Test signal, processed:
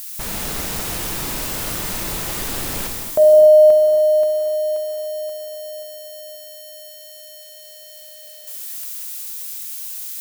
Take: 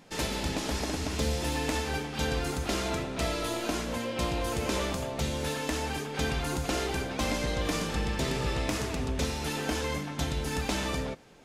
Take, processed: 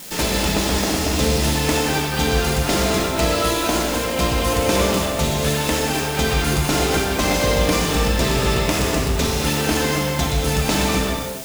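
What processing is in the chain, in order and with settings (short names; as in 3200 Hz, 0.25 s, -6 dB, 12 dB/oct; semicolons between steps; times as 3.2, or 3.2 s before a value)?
switching spikes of -35.5 dBFS; non-linear reverb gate 0.32 s flat, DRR 0.5 dB; gain +9 dB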